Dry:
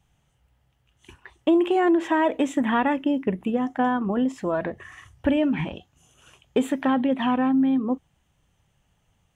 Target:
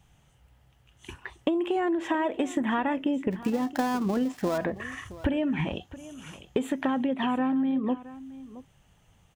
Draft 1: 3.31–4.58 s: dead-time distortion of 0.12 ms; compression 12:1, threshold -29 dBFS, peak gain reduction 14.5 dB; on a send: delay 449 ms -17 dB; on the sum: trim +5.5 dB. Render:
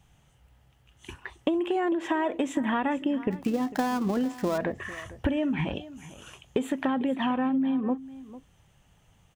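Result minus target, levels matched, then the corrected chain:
echo 222 ms early
3.31–4.58 s: dead-time distortion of 0.12 ms; compression 12:1, threshold -29 dBFS, peak gain reduction 14.5 dB; on a send: delay 671 ms -17 dB; on the sum: trim +5.5 dB

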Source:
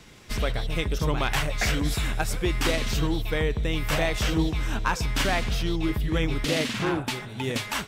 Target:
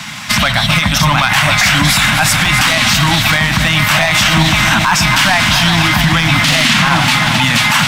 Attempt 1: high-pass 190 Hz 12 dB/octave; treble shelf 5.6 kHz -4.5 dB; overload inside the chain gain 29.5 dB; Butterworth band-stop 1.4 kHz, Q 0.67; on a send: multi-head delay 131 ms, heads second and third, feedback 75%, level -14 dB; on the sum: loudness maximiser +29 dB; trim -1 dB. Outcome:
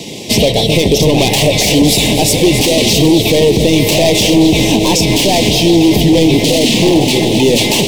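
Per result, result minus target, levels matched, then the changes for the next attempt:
500 Hz band +13.0 dB; overload inside the chain: distortion +10 dB
change: Butterworth band-stop 410 Hz, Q 0.67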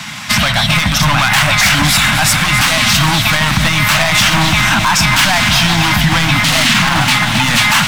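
overload inside the chain: distortion +10 dB
change: overload inside the chain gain 20.5 dB

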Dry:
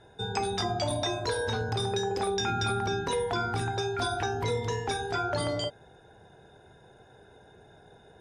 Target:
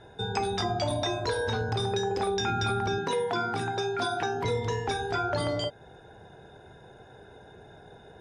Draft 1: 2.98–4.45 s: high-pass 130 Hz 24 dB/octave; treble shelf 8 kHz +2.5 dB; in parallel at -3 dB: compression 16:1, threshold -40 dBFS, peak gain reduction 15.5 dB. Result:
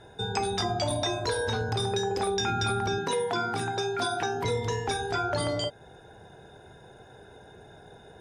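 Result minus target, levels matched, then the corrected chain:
8 kHz band +4.5 dB
2.98–4.45 s: high-pass 130 Hz 24 dB/octave; treble shelf 8 kHz -9 dB; in parallel at -3 dB: compression 16:1, threshold -40 dBFS, peak gain reduction 15.5 dB

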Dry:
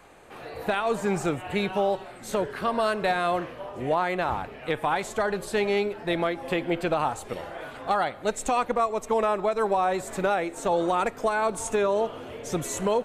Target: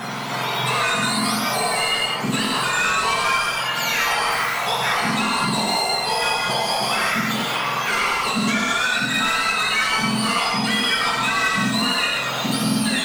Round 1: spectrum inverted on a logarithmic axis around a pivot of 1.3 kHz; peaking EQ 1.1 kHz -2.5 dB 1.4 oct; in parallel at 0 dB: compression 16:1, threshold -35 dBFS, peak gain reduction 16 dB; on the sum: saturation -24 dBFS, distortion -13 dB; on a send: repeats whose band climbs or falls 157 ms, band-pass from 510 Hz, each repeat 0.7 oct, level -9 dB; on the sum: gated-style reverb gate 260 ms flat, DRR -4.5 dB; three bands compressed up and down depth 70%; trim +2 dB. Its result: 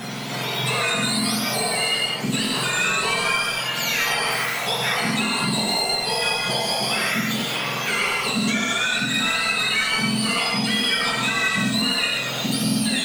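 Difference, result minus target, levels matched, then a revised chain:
1 kHz band -4.5 dB
spectrum inverted on a logarithmic axis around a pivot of 1.3 kHz; peaking EQ 1.1 kHz +7.5 dB 1.4 oct; in parallel at 0 dB: compression 16:1, threshold -35 dBFS, peak gain reduction 19 dB; on the sum: saturation -24 dBFS, distortion -10 dB; on a send: repeats whose band climbs or falls 157 ms, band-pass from 510 Hz, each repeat 0.7 oct, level -9 dB; on the sum: gated-style reverb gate 260 ms flat, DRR -4.5 dB; three bands compressed up and down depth 70%; trim +2 dB

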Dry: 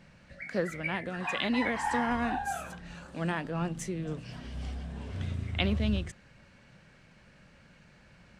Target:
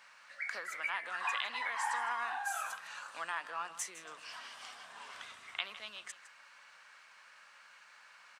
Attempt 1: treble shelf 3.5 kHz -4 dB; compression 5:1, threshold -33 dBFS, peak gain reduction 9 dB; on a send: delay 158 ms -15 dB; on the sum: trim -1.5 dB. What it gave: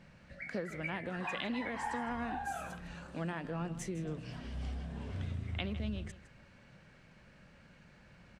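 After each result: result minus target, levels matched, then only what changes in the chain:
8 kHz band -7.5 dB; 1 kHz band -3.0 dB
change: treble shelf 3.5 kHz +7.5 dB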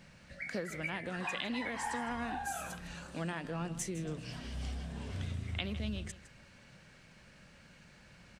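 1 kHz band -3.5 dB
add after compression: resonant high-pass 1.1 kHz, resonance Q 2.6

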